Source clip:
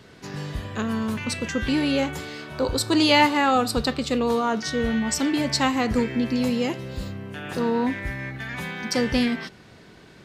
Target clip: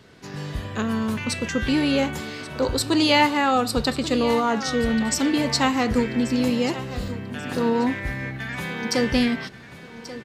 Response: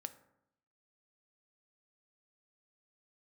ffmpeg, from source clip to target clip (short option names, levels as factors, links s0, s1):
-af "aecho=1:1:1135|2270|3405:0.178|0.064|0.023,dynaudnorm=f=160:g=5:m=1.5,volume=0.794"